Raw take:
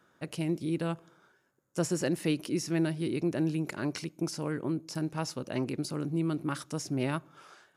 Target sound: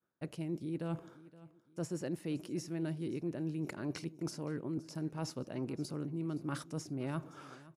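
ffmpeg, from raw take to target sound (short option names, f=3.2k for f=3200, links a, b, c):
-af "tiltshelf=f=1.1k:g=3.5,agate=range=-33dB:threshold=-51dB:ratio=3:detection=peak,areverse,acompressor=threshold=-40dB:ratio=4,areverse,aecho=1:1:519|1038|1557:0.112|0.0404|0.0145,volume=2.5dB"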